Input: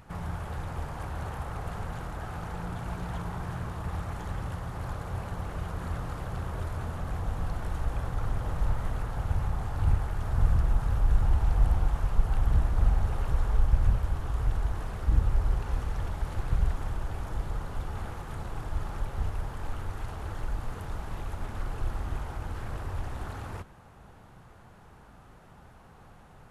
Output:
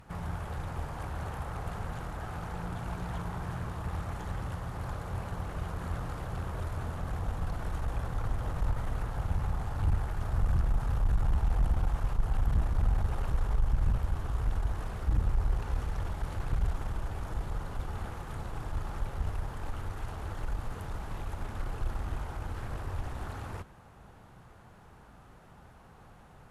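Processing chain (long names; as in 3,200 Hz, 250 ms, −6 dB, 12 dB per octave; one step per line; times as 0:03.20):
tube saturation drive 19 dB, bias 0.4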